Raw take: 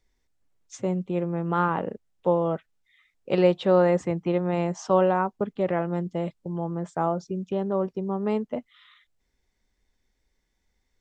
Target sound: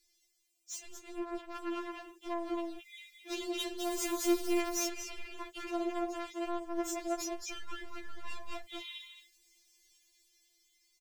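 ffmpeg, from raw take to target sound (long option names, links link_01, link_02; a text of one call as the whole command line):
ffmpeg -i in.wav -filter_complex "[0:a]asettb=1/sr,asplit=3[link_01][link_02][link_03];[link_01]atrim=end=3.804[link_04];[link_02]atrim=start=3.8:end=4.56,asetpts=PTS-STARTPTS,afade=type=in:duration=0.004:curve=qsin,afade=type=out:start_time=0.756:duration=0.004:curve=qsin,aeval=exprs='val(0)+0.5*0.0299*sgn(val(0))':channel_layout=same[link_05];[link_03]atrim=start=4.556[link_06];[link_04][link_05]acrossfade=duration=0.004:curve1=hsin:curve2=qsin[link_07];[link_07][link_06]acrossfade=duration=0.004:curve1=qsin:curve2=hsin,highpass=frequency=130:poles=1,highshelf=frequency=1900:width_type=q:width=3:gain=6.5,asplit=2[link_08][link_09];[link_09]aecho=0:1:217:0.422[link_10];[link_08][link_10]amix=inputs=2:normalize=0,acompressor=threshold=-27dB:ratio=6,bass=frequency=250:gain=11,treble=frequency=4000:gain=14,volume=32.5dB,asoftclip=hard,volume=-32.5dB,dynaudnorm=framelen=450:gausssize=9:maxgain=7dB,afftfilt=real='re*4*eq(mod(b,16),0)':imag='im*4*eq(mod(b,16),0)':win_size=2048:overlap=0.75,volume=-5.5dB" out.wav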